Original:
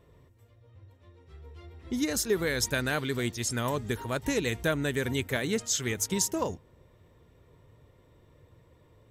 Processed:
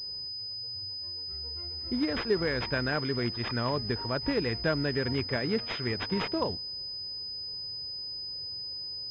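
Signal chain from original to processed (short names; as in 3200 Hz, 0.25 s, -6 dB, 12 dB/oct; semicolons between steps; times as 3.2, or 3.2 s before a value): pulse-width modulation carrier 5000 Hz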